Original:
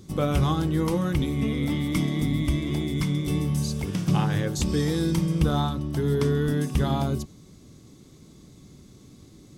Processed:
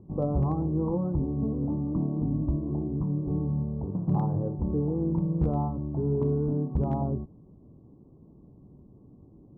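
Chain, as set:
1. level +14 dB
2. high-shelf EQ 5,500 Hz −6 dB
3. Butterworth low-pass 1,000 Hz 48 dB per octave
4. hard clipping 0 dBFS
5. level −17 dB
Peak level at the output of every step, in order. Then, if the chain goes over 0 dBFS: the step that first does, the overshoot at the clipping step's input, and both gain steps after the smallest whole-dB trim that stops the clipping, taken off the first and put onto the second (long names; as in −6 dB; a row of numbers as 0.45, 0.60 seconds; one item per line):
+3.5, +3.0, +3.0, 0.0, −17.0 dBFS
step 1, 3.0 dB
step 1 +11 dB, step 5 −14 dB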